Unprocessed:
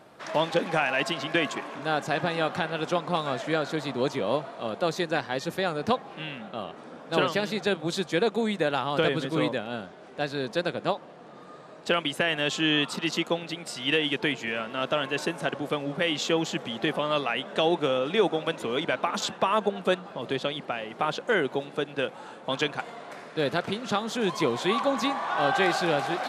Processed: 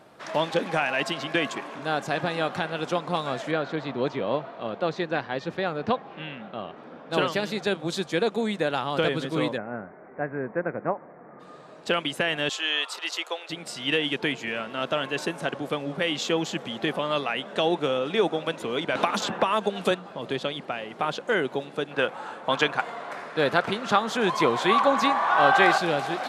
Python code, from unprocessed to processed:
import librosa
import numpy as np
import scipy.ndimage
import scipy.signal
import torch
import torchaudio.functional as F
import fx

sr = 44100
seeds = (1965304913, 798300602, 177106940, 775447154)

y = fx.lowpass(x, sr, hz=3400.0, slope=12, at=(3.51, 7.11))
y = fx.steep_lowpass(y, sr, hz=2200.0, slope=72, at=(9.56, 11.39), fade=0.02)
y = fx.bessel_highpass(y, sr, hz=670.0, order=6, at=(12.49, 13.5))
y = fx.band_squash(y, sr, depth_pct=100, at=(18.95, 19.91))
y = fx.peak_eq(y, sr, hz=1200.0, db=8.0, octaves=2.2, at=(21.91, 25.78))